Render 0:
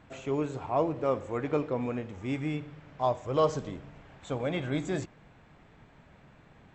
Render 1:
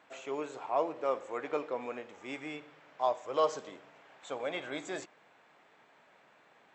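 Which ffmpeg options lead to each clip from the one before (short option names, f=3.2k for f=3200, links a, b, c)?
-af "highpass=500,volume=-1dB"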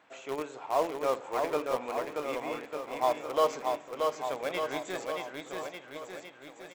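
-filter_complex "[0:a]asplit=2[a][b];[b]acrusher=bits=4:mix=0:aa=0.000001,volume=-10dB[c];[a][c]amix=inputs=2:normalize=0,aecho=1:1:630|1197|1707|2167|2580:0.631|0.398|0.251|0.158|0.1"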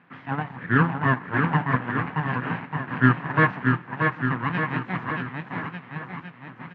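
-af "aeval=exprs='abs(val(0))':c=same,highpass=f=110:w=0.5412,highpass=f=110:w=1.3066,equalizer=f=120:t=q:w=4:g=7,equalizer=f=170:t=q:w=4:g=10,equalizer=f=260:t=q:w=4:g=8,equalizer=f=600:t=q:w=4:g=-4,equalizer=f=1k:t=q:w=4:g=3,equalizer=f=1.7k:t=q:w=4:g=5,lowpass=f=2.4k:w=0.5412,lowpass=f=2.4k:w=1.3066,volume=8dB"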